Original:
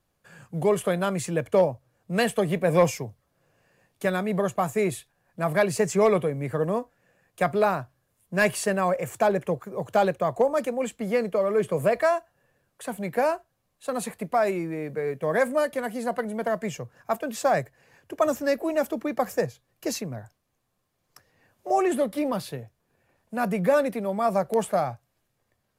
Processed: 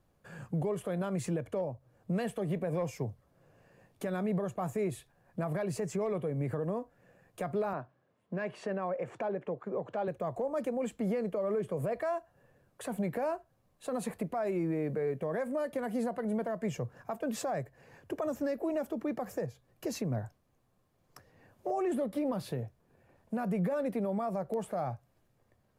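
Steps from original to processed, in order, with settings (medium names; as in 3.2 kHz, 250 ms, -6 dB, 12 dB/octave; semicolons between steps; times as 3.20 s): tilt shelf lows +5 dB, about 1.3 kHz; compression 5:1, threshold -28 dBFS, peak gain reduction 15.5 dB; peak limiter -25 dBFS, peak gain reduction 9 dB; 7.73–10.08 s: band-pass 200–3200 Hz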